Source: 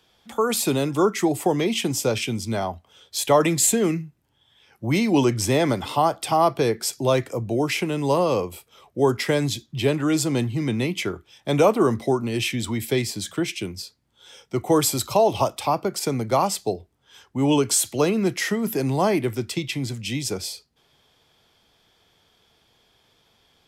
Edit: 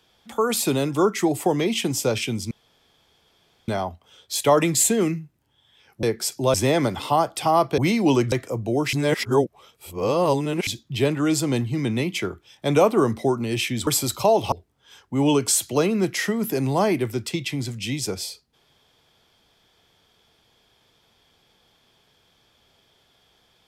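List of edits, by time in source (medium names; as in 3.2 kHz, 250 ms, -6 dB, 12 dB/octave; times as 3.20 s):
2.51 s: insert room tone 1.17 s
4.86–5.40 s: swap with 6.64–7.15 s
7.76–9.50 s: reverse
12.70–14.78 s: delete
15.43–16.75 s: delete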